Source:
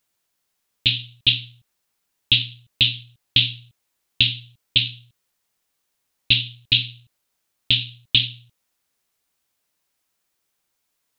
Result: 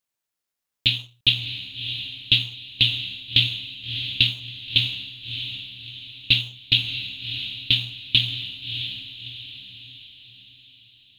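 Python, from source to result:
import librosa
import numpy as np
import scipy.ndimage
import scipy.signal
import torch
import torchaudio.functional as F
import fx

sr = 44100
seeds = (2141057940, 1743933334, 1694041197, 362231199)

p1 = fx.law_mismatch(x, sr, coded='A')
p2 = p1 + fx.echo_diffused(p1, sr, ms=644, feedback_pct=46, wet_db=-8.0, dry=0)
y = F.gain(torch.from_numpy(p2), -1.0).numpy()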